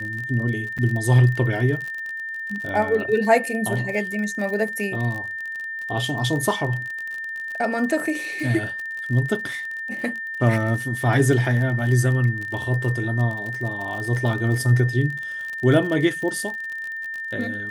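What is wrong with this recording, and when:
surface crackle 40 per second −28 dBFS
whistle 1,800 Hz −28 dBFS
0:00.78–0:00.79: drop-out 6.5 ms

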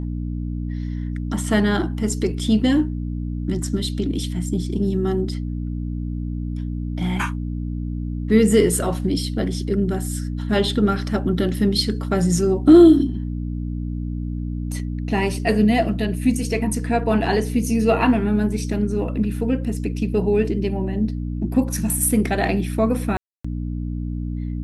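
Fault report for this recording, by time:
mains hum 60 Hz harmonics 5 −26 dBFS
0:23.17–0:23.45: drop-out 275 ms

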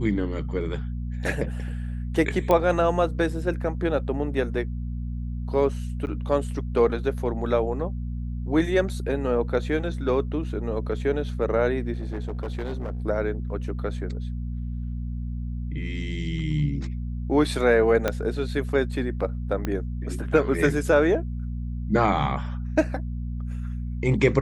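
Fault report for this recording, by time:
mains hum 60 Hz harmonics 4 −30 dBFS
0:02.51: click −10 dBFS
0:06.06–0:06.07: drop-out 9.4 ms
0:11.95–0:13.02: clipping −26 dBFS
0:18.08: click −9 dBFS
0:19.65: click −14 dBFS

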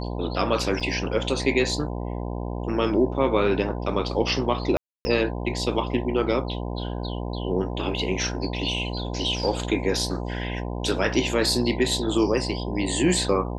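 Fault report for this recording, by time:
mains buzz 60 Hz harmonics 17 −30 dBFS
0:00.80–0:00.81: drop-out 6.2 ms
0:04.77–0:05.05: drop-out 280 ms

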